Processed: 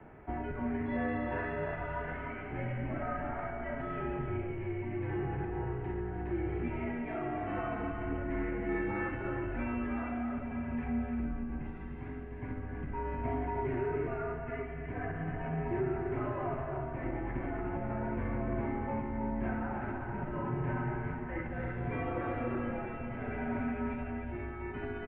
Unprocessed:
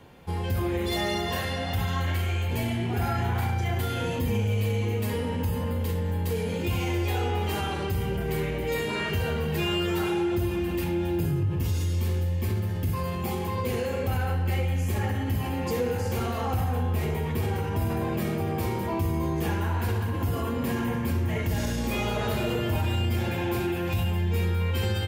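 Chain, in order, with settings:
speech leveller
single-tap delay 302 ms −7 dB
single-sideband voice off tune −110 Hz 160–2,200 Hz
level −5.5 dB

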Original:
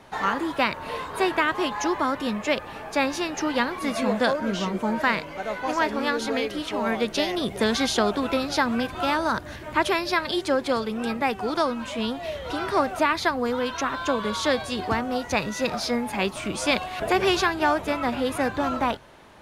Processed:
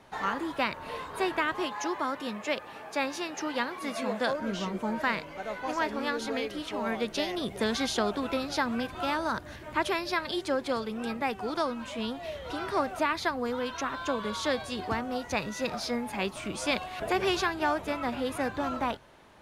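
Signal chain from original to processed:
0:01.65–0:04.30: high-pass filter 240 Hz 6 dB per octave
level −6 dB

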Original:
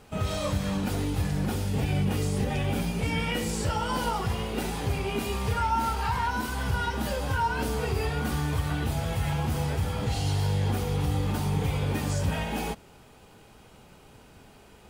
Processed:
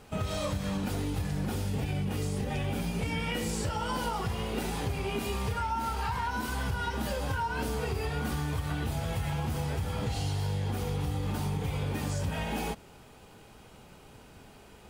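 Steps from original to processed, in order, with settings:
downward compressor, threshold −28 dBFS, peak gain reduction 7 dB

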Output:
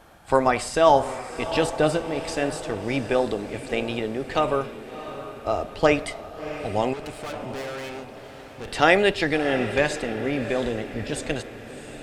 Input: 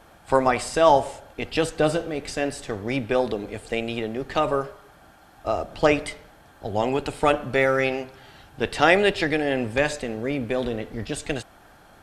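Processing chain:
0:06.93–0:08.68: tube saturation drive 32 dB, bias 0.6
on a send: feedback delay with all-pass diffusion 685 ms, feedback 51%, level −12 dB

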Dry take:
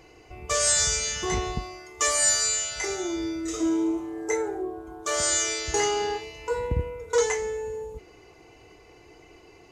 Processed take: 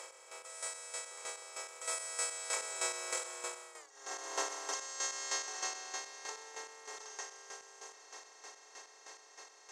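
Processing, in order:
compressor on every frequency bin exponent 0.2
source passing by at 0:03.83, 33 m/s, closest 2.1 metres
high-pass filter 590 Hz 24 dB per octave
compressor whose output falls as the input rises −45 dBFS, ratio −1
square-wave tremolo 3.2 Hz, depth 65%, duty 35%
every ending faded ahead of time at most 110 dB per second
level +7.5 dB

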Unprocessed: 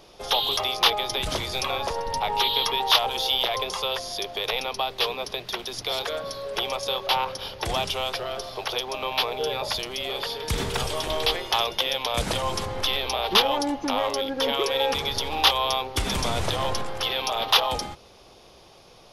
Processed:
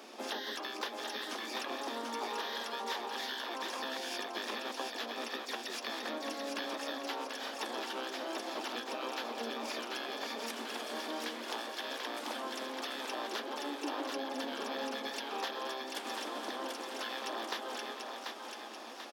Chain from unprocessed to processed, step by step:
downward compressor 10 to 1, threshold −38 dBFS, peak gain reduction 24 dB
pitch-shifted copies added −12 semitones −2 dB, +4 semitones −8 dB, +7 semitones −11 dB
Chebyshev high-pass with heavy ripple 220 Hz, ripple 3 dB
echo with a time of its own for lows and highs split 520 Hz, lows 153 ms, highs 738 ms, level −4 dB

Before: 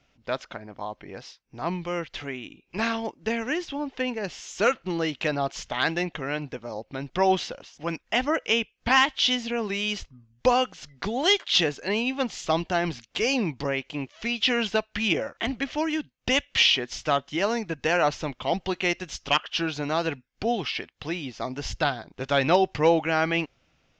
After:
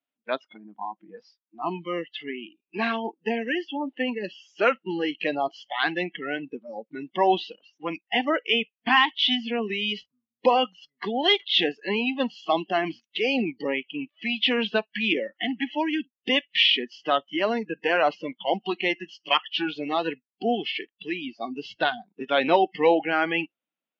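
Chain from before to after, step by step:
spectral magnitudes quantised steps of 15 dB
noise reduction from a noise print of the clip's start 25 dB
elliptic band-pass filter 220–3,600 Hz, stop band 50 dB
level +2 dB

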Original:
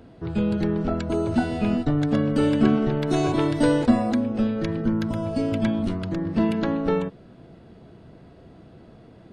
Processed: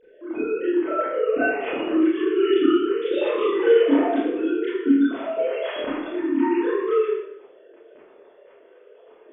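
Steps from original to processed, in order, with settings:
three sine waves on the formant tracks
dynamic equaliser 2,600 Hz, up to +4 dB, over −44 dBFS, Q 1
four-comb reverb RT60 0.76 s, combs from 25 ms, DRR −10 dB
level −9 dB

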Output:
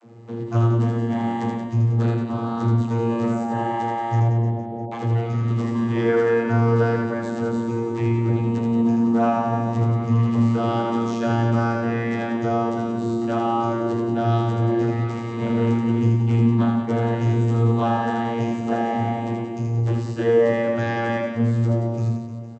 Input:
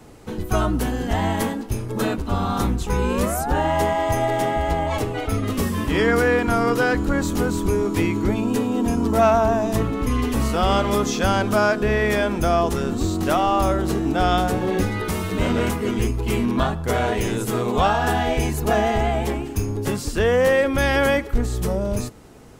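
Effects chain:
0:04.19–0:04.91: Butterworth low-pass 700 Hz 48 dB per octave
channel vocoder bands 32, saw 116 Hz
reverse bouncing-ball delay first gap 80 ms, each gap 1.25×, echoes 5
level +1 dB

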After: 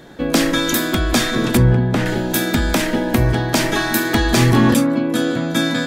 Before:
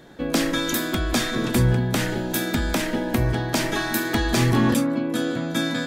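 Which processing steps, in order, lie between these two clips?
0:01.57–0:02.06: low-pass filter 1,600 Hz 6 dB per octave
level +6 dB

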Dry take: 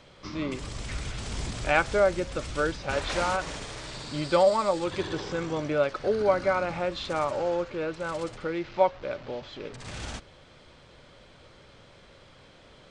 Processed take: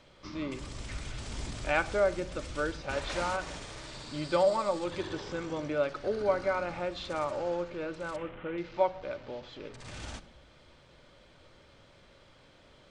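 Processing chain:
0:08.16–0:08.58: linear delta modulator 16 kbit/s, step −37 dBFS
convolution reverb RT60 0.90 s, pre-delay 3 ms, DRR 13 dB
level −5.5 dB

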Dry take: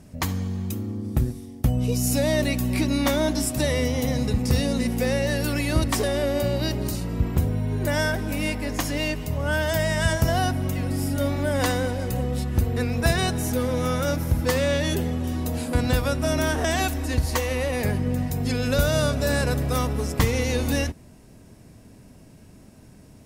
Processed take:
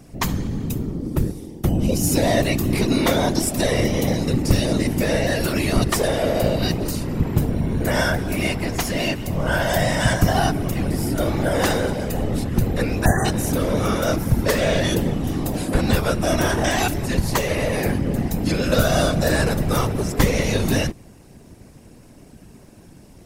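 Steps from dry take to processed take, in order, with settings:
random phases in short frames
time-frequency box erased 0:13.05–0:13.25, 2,000–5,900 Hz
level +3.5 dB

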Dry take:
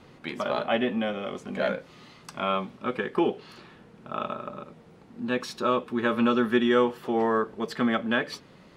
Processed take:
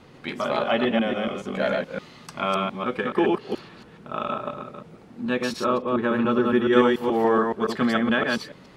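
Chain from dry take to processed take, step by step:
delay that plays each chunk backwards 142 ms, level −2 dB
0:05.66–0:06.73: high-shelf EQ 2,100 Hz −9.5 dB
level +2 dB

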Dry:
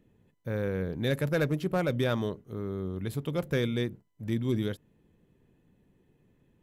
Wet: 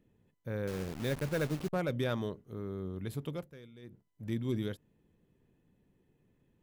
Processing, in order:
0:00.67–0:01.73: hold until the input has moved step −33.5 dBFS
0:03.27–0:04.07: duck −19 dB, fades 0.25 s
level −5 dB

